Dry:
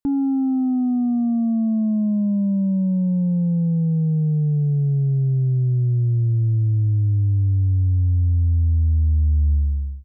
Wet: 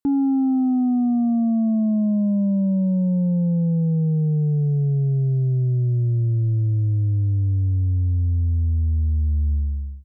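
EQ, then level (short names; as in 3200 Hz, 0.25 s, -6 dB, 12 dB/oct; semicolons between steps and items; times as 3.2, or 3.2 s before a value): HPF 75 Hz 6 dB/oct; dynamic EQ 560 Hz, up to +5 dB, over -41 dBFS, Q 1.1; 0.0 dB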